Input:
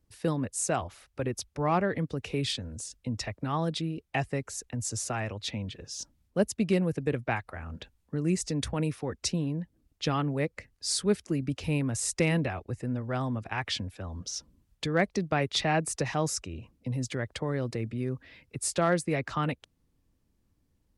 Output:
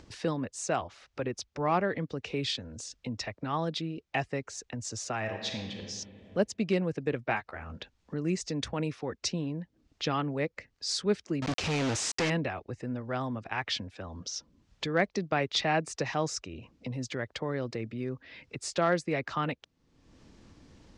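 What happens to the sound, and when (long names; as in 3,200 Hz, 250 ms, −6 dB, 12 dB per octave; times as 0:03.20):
0:05.17–0:05.84: thrown reverb, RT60 1.6 s, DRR 3 dB
0:07.27–0:07.78: double-tracking delay 14 ms −7 dB
0:11.42–0:12.30: log-companded quantiser 2 bits
whole clip: low-pass filter 6,500 Hz 24 dB per octave; low-shelf EQ 130 Hz −11 dB; upward compression, threshold −36 dBFS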